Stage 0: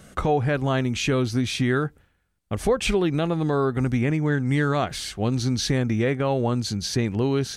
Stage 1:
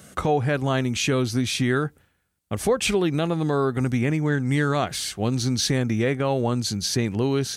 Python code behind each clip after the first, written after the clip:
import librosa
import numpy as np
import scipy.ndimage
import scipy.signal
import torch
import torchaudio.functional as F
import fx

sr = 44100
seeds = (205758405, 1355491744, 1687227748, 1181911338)

y = scipy.signal.sosfilt(scipy.signal.butter(2, 73.0, 'highpass', fs=sr, output='sos'), x)
y = fx.high_shelf(y, sr, hz=6100.0, db=8.0)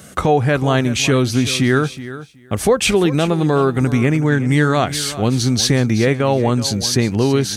y = fx.echo_feedback(x, sr, ms=373, feedback_pct=15, wet_db=-14.5)
y = y * librosa.db_to_amplitude(7.0)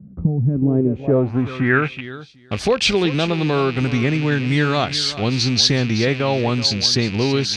y = fx.rattle_buzz(x, sr, strikes_db=-28.0, level_db=-19.0)
y = fx.filter_sweep_lowpass(y, sr, from_hz=190.0, to_hz=4600.0, start_s=0.41, end_s=2.29, q=2.7)
y = y * librosa.db_to_amplitude(-3.5)